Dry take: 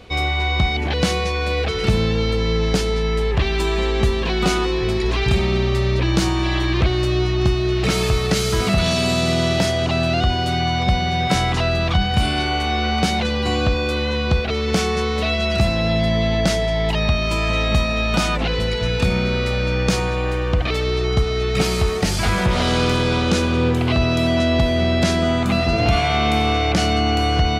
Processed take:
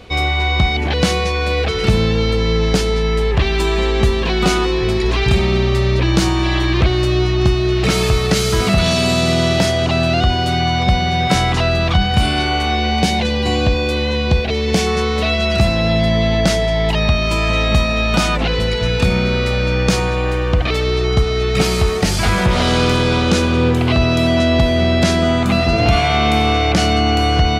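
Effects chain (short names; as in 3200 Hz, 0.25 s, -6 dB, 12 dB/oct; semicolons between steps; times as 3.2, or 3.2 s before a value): 12.75–14.87 bell 1300 Hz -14 dB 0.25 oct; gain +3.5 dB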